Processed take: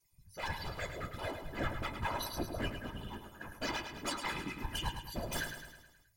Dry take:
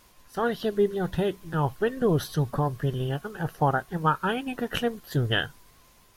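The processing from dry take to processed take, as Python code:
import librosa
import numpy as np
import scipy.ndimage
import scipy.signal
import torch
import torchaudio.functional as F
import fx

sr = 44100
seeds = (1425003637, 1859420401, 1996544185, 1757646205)

y = fx.bin_expand(x, sr, power=1.5)
y = 10.0 ** (-28.5 / 20.0) * (np.abs((y / 10.0 ** (-28.5 / 20.0) + 3.0) % 4.0 - 2.0) - 1.0)
y = fx.stiff_resonator(y, sr, f0_hz=300.0, decay_s=0.24, stiffness=0.008)
y = fx.whisperise(y, sr, seeds[0])
y = fx.echo_feedback(y, sr, ms=106, feedback_pct=54, wet_db=-8)
y = y * 10.0 ** (10.0 / 20.0)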